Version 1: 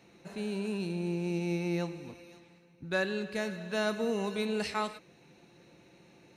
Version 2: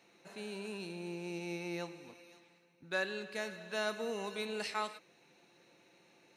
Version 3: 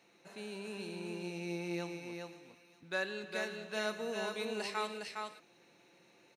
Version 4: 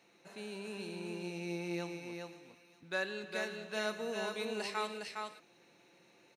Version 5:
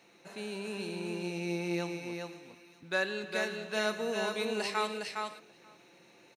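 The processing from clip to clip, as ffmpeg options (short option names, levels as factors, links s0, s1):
-af "highpass=f=550:p=1,volume=0.75"
-af "aecho=1:1:410:0.631,volume=0.891"
-af anull
-filter_complex "[0:a]asplit=2[s0][s1];[s1]adelay=484,volume=0.0708,highshelf=f=4000:g=-10.9[s2];[s0][s2]amix=inputs=2:normalize=0,volume=1.78"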